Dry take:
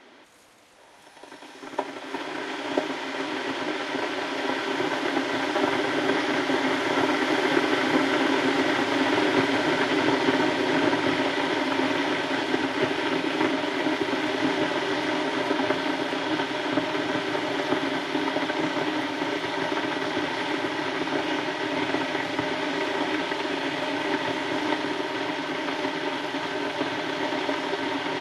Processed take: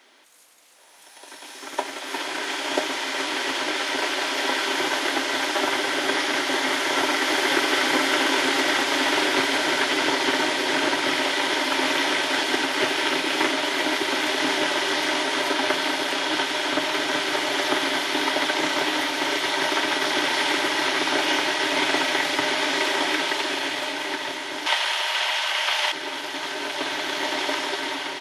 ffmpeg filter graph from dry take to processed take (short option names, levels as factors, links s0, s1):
-filter_complex "[0:a]asettb=1/sr,asplit=3[s0][s1][s2];[s0]atrim=end=24.664[s3];[s1]atrim=start=24.66:end=25.92,asetpts=PTS-STARTPTS,afade=t=in:d=0.004:c=qsin,afade=t=out:st=1.256:d=0.004:c=qsin,highpass=f=620:w=0.5412,highpass=f=620:w=1.3066,equalizer=f=2900:w=3:g=5,acontrast=87[s4];[s2]atrim=start=25.916[s5];[s3][s4]acrossfade=d=0.004:c1=hsin:c2=qsin[s6];[s6][s5]acrossfade=d=0.004:c1=qsin:c2=hsin,aemphasis=mode=production:type=riaa,dynaudnorm=f=520:g=5:m=3.76,highshelf=f=8200:g=-4.5,volume=0.531"